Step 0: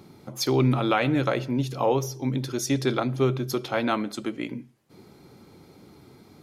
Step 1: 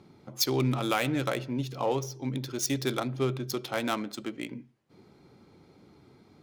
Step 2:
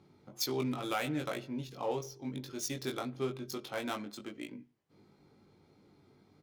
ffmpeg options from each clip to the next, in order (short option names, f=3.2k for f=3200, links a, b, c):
-af "adynamicsmooth=sensitivity=4.5:basefreq=3k,aemphasis=mode=production:type=75fm,volume=-5dB"
-filter_complex "[0:a]asplit=2[a][b];[b]adelay=20,volume=-4dB[c];[a][c]amix=inputs=2:normalize=0,volume=-8.5dB"